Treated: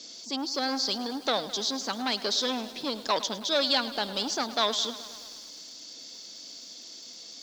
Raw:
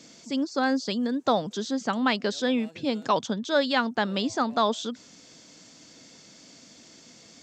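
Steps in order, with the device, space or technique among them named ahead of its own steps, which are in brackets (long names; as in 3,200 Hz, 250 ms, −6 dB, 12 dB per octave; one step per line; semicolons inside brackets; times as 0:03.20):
high shelf with overshoot 3,100 Hz +11.5 dB, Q 1.5
public-address speaker with an overloaded transformer (saturating transformer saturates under 2,200 Hz; band-pass filter 300–5,600 Hz)
low-pass filter 6,800 Hz 12 dB per octave
feedback echo at a low word length 106 ms, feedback 80%, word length 7 bits, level −15 dB
level −1 dB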